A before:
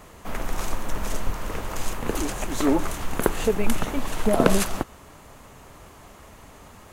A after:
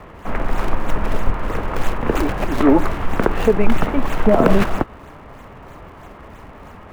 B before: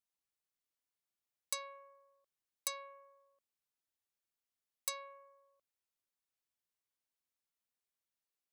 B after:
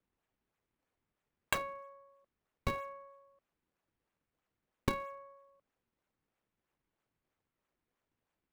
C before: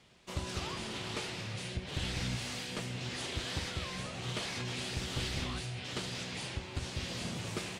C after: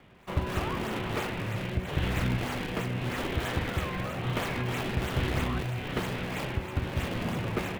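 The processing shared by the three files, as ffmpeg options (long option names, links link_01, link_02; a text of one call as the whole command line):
ffmpeg -i in.wav -filter_complex "[0:a]lowpass=11000,acrossover=split=410|430|2800[link_01][link_02][link_03][link_04];[link_04]acrusher=samples=41:mix=1:aa=0.000001:lfo=1:lforange=65.6:lforate=3.1[link_05];[link_01][link_02][link_03][link_05]amix=inputs=4:normalize=0,alimiter=level_in=9dB:limit=-1dB:release=50:level=0:latency=1,volume=-1dB" out.wav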